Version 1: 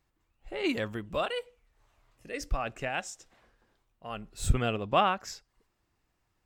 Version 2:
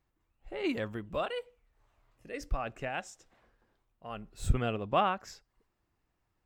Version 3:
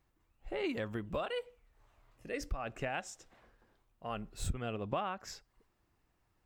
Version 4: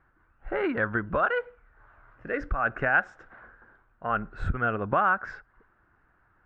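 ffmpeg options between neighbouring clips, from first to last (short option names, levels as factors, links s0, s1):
-af "equalizer=f=8200:t=o:w=3:g=-6,volume=0.794"
-af "acompressor=threshold=0.0158:ratio=6,volume=1.41"
-af "lowpass=f=1500:t=q:w=6.6,volume=2.37"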